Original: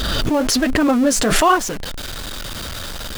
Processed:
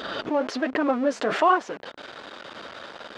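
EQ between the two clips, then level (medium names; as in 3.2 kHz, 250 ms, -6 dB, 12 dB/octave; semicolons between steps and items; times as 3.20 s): high-pass 420 Hz 12 dB/octave; tape spacing loss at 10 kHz 34 dB; -1.0 dB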